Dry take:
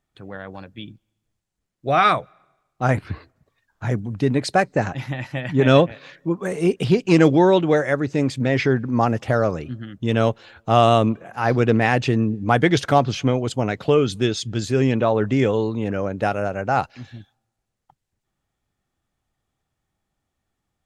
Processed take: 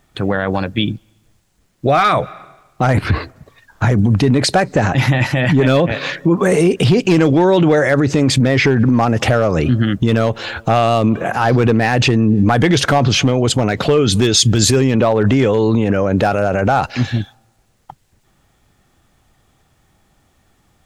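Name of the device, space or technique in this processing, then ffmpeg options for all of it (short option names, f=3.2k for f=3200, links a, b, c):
loud club master: -filter_complex "[0:a]acompressor=threshold=-18dB:ratio=3,asoftclip=type=hard:threshold=-13.5dB,alimiter=level_in=25dB:limit=-1dB:release=50:level=0:latency=1,asettb=1/sr,asplit=3[a][b][c];[a]atrim=end=14.194[d];[b]atrim=start=14.19:end=14.81,asetpts=PTS-STARTPTS,afade=t=in:d=0.004:c=qsin,afade=t=out:st=0.616:d=0.004:c=qsin,highshelf=f=7k:g=10[e];[c]atrim=start=14.806[f];[d][e]acrossfade=d=0.004:c1=hsin:c2=qsin[g];[g][f]acrossfade=d=0.004:c1=qsin:c2=hsin,volume=-4.5dB"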